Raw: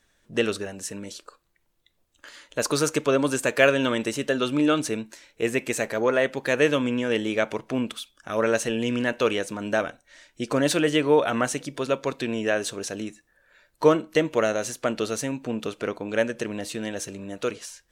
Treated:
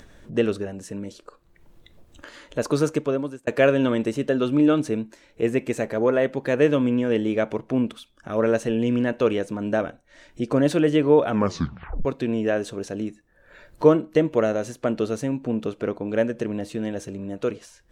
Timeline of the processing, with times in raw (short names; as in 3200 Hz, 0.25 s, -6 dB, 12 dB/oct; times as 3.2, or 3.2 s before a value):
2.85–3.47 fade out
11.31 tape stop 0.74 s
whole clip: tilt shelf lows +5.5 dB, about 770 Hz; upward compressor, threshold -34 dBFS; high shelf 4300 Hz -5.5 dB